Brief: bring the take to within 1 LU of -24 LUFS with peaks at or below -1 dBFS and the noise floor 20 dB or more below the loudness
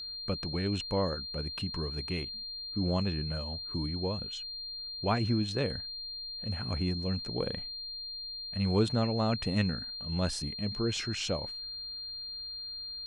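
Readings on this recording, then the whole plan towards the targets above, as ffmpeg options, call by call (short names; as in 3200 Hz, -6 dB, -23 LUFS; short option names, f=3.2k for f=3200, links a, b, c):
steady tone 4200 Hz; tone level -38 dBFS; loudness -33.0 LUFS; peak -15.0 dBFS; loudness target -24.0 LUFS
-> -af "bandreject=f=4.2k:w=30"
-af "volume=9dB"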